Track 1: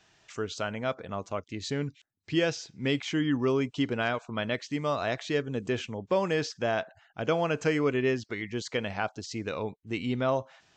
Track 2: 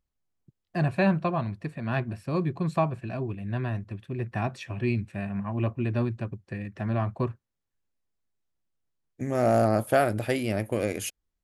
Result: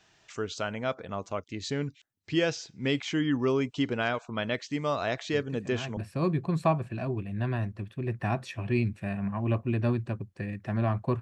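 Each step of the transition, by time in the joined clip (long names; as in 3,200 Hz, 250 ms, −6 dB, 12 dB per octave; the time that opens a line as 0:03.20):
track 1
0:05.33: mix in track 2 from 0:01.45 0.64 s −10.5 dB
0:05.97: continue with track 2 from 0:02.09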